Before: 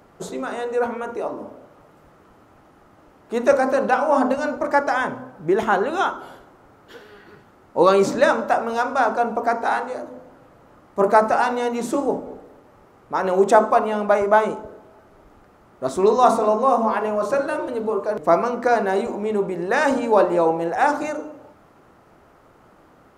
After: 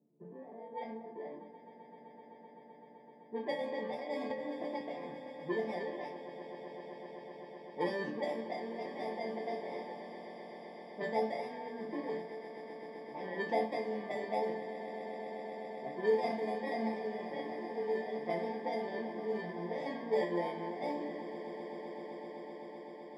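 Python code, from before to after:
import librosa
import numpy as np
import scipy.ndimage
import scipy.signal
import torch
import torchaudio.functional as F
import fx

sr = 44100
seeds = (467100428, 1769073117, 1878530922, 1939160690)

p1 = fx.bit_reversed(x, sr, seeds[0], block=32)
p2 = scipy.signal.sosfilt(scipy.signal.butter(4, 160.0, 'highpass', fs=sr, output='sos'), p1)
p3 = fx.resonator_bank(p2, sr, root=50, chord='minor', decay_s=0.27)
p4 = fx.env_lowpass(p3, sr, base_hz=350.0, full_db=-27.5)
p5 = fx.spacing_loss(p4, sr, db_at_10k=37)
p6 = p5 + fx.echo_swell(p5, sr, ms=128, loudest=8, wet_db=-17.0, dry=0)
p7 = fx.band_squash(p6, sr, depth_pct=100, at=(4.3, 4.81))
y = p7 * librosa.db_to_amplitude(1.0)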